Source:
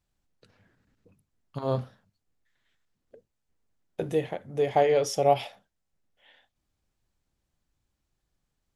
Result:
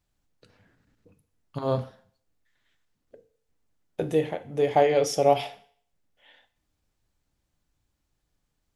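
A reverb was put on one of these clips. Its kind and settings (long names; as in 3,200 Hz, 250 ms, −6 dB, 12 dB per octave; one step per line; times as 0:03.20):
feedback delay network reverb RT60 0.56 s, low-frequency decay 0.75×, high-frequency decay 1×, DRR 11 dB
level +2 dB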